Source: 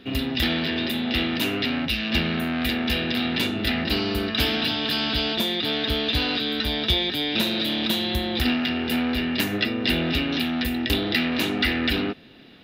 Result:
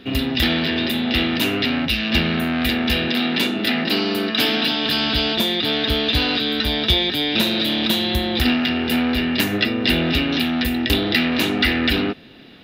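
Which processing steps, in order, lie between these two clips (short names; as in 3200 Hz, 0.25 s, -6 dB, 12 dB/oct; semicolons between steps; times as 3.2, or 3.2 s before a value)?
3.08–4.86 HPF 160 Hz 24 dB/oct; gain +4.5 dB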